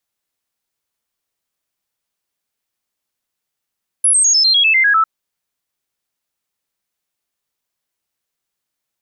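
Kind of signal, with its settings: stepped sine 10.5 kHz down, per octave 3, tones 10, 0.10 s, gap 0.00 s -9 dBFS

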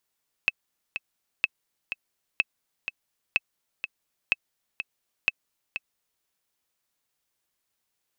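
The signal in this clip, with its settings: metronome 125 bpm, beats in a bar 2, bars 6, 2.61 kHz, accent 9.5 dB -8 dBFS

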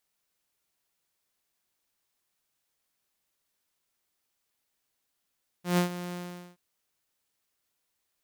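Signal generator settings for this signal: ADSR saw 177 Hz, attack 137 ms, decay 109 ms, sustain -14 dB, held 0.49 s, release 435 ms -18 dBFS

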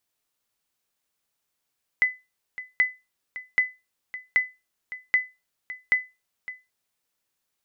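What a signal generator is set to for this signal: sonar ping 2.01 kHz, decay 0.24 s, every 0.78 s, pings 6, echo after 0.56 s, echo -15.5 dB -12 dBFS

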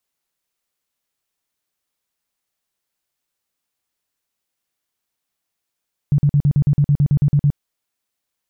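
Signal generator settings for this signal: tone bursts 144 Hz, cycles 9, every 0.11 s, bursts 13, -10.5 dBFS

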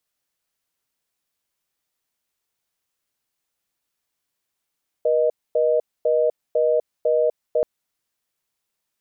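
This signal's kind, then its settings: call progress tone reorder tone, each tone -18.5 dBFS 2.58 s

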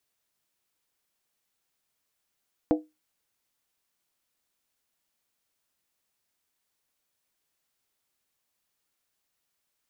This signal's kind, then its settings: skin hit, lowest mode 308 Hz, decay 0.22 s, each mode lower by 5 dB, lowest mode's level -16 dB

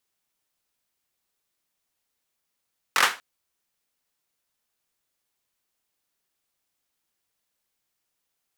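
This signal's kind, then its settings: hand clap length 0.24 s, apart 22 ms, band 1.4 kHz, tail 0.28 s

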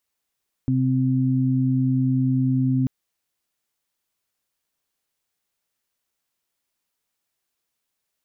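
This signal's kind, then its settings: steady additive tone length 2.19 s, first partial 130 Hz, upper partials -0.5 dB, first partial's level -20 dB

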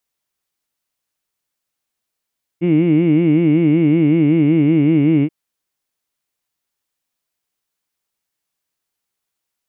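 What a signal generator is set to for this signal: formant vowel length 2.68 s, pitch 164 Hz, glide -1.5 st, vibrato depth 1.45 st, F1 310 Hz, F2 2.2 kHz, F3 2.8 kHz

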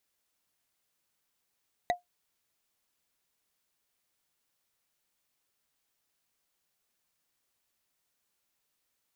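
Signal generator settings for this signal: wood hit, lowest mode 710 Hz, decay 0.14 s, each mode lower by 5 dB, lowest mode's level -20 dB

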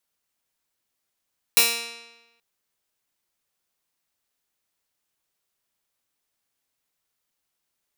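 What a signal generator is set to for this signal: plucked string A#3, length 0.83 s, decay 1.09 s, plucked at 0.15, bright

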